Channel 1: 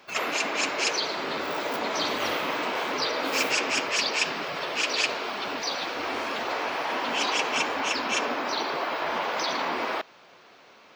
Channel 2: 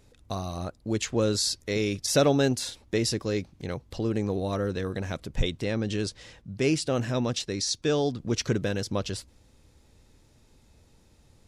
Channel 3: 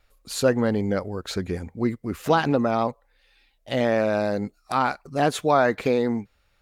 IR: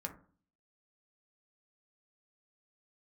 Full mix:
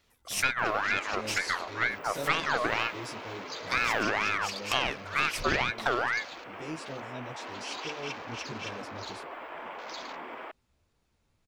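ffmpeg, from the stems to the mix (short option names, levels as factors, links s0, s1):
-filter_complex "[0:a]afwtdn=0.0141,highshelf=f=10000:g=12,adelay=500,volume=0.237[s0];[1:a]asplit=2[s1][s2];[s2]adelay=11.7,afreqshift=2.6[s3];[s1][s3]amix=inputs=2:normalize=1,volume=0.237[s4];[2:a]highpass=120,aeval=exprs='val(0)*sin(2*PI*1400*n/s+1400*0.4/2.1*sin(2*PI*2.1*n/s))':c=same,volume=1.19[s5];[s4][s5]amix=inputs=2:normalize=0,aeval=exprs='0.562*(cos(1*acos(clip(val(0)/0.562,-1,1)))-cos(1*PI/2))+0.224*(cos(2*acos(clip(val(0)/0.562,-1,1)))-cos(2*PI/2))':c=same,acompressor=threshold=0.0708:ratio=10,volume=1[s6];[s0][s6]amix=inputs=2:normalize=0"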